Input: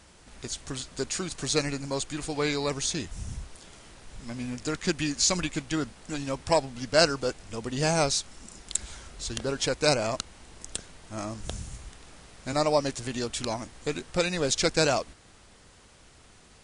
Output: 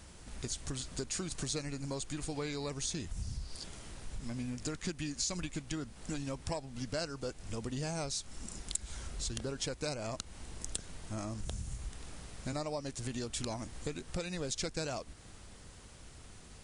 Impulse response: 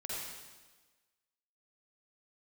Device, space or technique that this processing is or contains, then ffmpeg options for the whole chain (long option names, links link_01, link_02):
ASMR close-microphone chain: -filter_complex "[0:a]lowshelf=frequency=240:gain=8,acompressor=threshold=-33dB:ratio=6,highshelf=frequency=7700:gain=7,asettb=1/sr,asplit=3[link_01][link_02][link_03];[link_01]atrim=end=3.224[link_04];[link_02]atrim=start=3.22:end=3.64,asetpts=PTS-STARTPTS,afade=type=in:duration=0.004:curve=qsin,afade=type=out:start_time=0.416:duration=0.004:curve=qsin,equalizer=frequency=4700:width=3.4:gain=14.5[link_05];[link_03]atrim=start=3.636[link_06];[link_04][link_05]acrossfade=duration=0.004:curve1=hsin:curve2=qsin[link_07];[link_07][link_06]acrossfade=duration=0.004:curve1=qsin:curve2=hsin,volume=-2.5dB"